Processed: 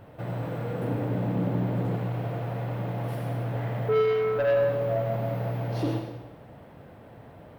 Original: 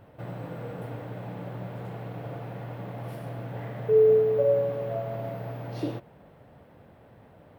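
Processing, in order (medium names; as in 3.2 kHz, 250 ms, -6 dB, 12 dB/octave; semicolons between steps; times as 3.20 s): 0.82–1.95 s: peaking EQ 250 Hz +10.5 dB 1.6 oct; saturation -25 dBFS, distortion -7 dB; reverberation RT60 0.85 s, pre-delay 66 ms, DRR 4.5 dB; trim +4 dB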